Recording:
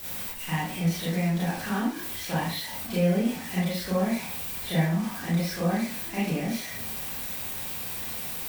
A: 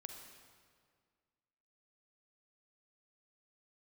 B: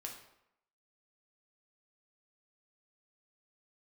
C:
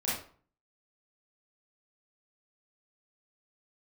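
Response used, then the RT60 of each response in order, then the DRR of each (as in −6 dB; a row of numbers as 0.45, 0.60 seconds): C; 1.9, 0.80, 0.45 seconds; 3.5, 0.0, −9.0 decibels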